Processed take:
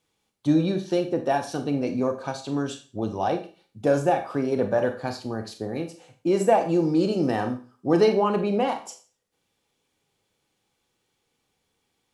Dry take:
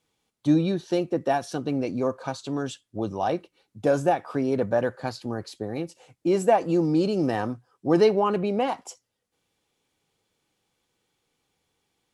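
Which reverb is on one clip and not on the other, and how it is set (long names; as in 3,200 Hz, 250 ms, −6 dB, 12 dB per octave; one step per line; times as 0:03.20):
four-comb reverb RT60 0.37 s, combs from 28 ms, DRR 6.5 dB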